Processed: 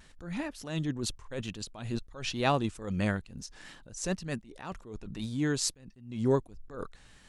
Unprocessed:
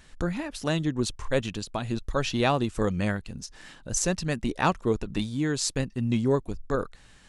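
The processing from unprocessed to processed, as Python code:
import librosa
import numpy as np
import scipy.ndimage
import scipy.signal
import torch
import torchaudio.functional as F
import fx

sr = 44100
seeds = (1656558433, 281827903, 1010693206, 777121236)

y = fx.wow_flutter(x, sr, seeds[0], rate_hz=2.1, depth_cents=42.0)
y = fx.attack_slew(y, sr, db_per_s=100.0)
y = y * librosa.db_to_amplitude(-2.0)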